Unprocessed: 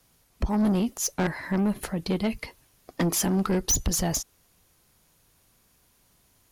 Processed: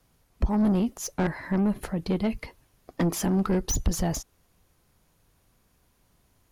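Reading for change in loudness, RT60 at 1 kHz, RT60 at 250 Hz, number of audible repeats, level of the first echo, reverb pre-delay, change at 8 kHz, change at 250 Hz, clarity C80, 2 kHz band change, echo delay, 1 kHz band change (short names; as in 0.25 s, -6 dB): -1.0 dB, none, none, none, none, none, -6.5 dB, +0.5 dB, none, -2.5 dB, none, -1.0 dB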